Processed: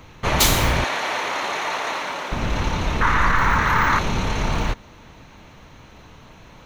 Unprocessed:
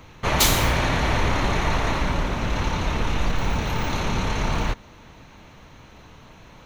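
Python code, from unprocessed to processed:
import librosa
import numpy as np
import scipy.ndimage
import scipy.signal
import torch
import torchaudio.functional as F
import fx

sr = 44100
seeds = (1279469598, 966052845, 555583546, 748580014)

y = fx.highpass(x, sr, hz=540.0, slope=12, at=(0.84, 2.32))
y = fx.band_shelf(y, sr, hz=1400.0, db=14.0, octaves=1.3, at=(3.01, 3.99))
y = y * librosa.db_to_amplitude(1.5)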